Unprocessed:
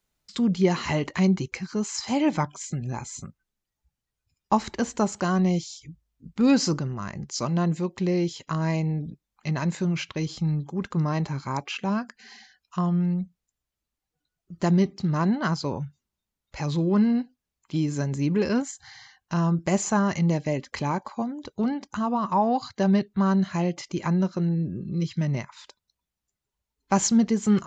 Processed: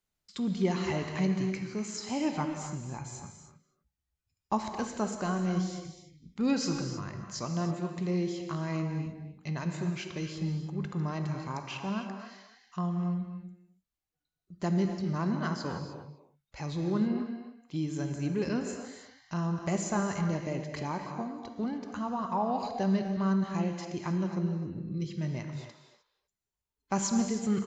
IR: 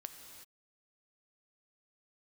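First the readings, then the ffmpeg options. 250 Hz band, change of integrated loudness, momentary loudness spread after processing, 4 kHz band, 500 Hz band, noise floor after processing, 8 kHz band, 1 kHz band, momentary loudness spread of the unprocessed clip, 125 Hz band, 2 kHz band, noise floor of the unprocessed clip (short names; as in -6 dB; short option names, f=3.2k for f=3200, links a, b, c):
-7.0 dB, -7.0 dB, 12 LU, -7.0 dB, -6.5 dB, under -85 dBFS, n/a, -7.0 dB, 10 LU, -7.0 dB, -6.5 dB, under -85 dBFS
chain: -filter_complex "[0:a]asplit=2[a][b];[b]adelay=250,highpass=300,lowpass=3.4k,asoftclip=type=hard:threshold=-18dB,volume=-11dB[c];[a][c]amix=inputs=2:normalize=0[d];[1:a]atrim=start_sample=2205,asetrate=52920,aresample=44100[e];[d][e]afir=irnorm=-1:irlink=0,volume=-1.5dB"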